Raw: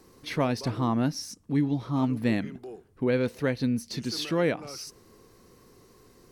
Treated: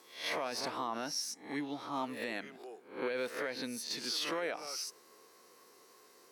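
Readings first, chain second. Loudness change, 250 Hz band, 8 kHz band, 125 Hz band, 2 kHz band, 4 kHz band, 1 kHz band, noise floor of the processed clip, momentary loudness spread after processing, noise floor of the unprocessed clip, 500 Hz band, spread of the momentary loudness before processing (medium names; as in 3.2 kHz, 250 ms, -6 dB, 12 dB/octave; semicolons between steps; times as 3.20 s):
-9.0 dB, -15.5 dB, 0.0 dB, -27.0 dB, -3.5 dB, -1.0 dB, -4.0 dB, -62 dBFS, 6 LU, -58 dBFS, -9.0 dB, 12 LU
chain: reverse spectral sustain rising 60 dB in 0.43 s; high-pass 560 Hz 12 dB/octave; peak limiter -24.5 dBFS, peak gain reduction 9.5 dB; trim -1.5 dB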